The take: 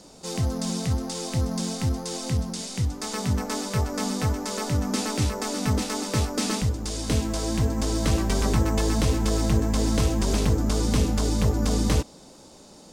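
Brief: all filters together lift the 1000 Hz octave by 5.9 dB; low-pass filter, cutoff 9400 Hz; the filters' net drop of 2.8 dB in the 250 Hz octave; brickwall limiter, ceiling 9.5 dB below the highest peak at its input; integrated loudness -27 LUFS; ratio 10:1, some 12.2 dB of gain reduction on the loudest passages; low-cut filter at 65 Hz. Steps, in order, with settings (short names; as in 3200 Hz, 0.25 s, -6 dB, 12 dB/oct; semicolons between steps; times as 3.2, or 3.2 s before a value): HPF 65 Hz; LPF 9400 Hz; bell 250 Hz -4 dB; bell 1000 Hz +7.5 dB; compressor 10:1, threshold -31 dBFS; gain +10 dB; limiter -16.5 dBFS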